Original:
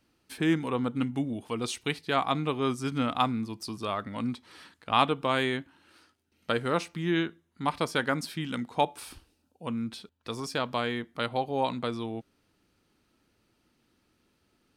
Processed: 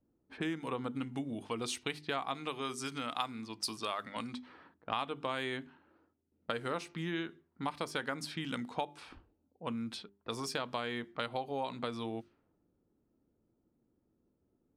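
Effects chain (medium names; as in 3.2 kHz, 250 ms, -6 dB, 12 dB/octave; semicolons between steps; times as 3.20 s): hum notches 50/100/150/200/250/300/350/400 Hz; compression 6:1, threshold -32 dBFS, peak gain reduction 14 dB; 2.34–4.34 s: tilt EQ +2 dB/octave; level-controlled noise filter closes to 420 Hz, open at -34 dBFS; bass shelf 240 Hz -5 dB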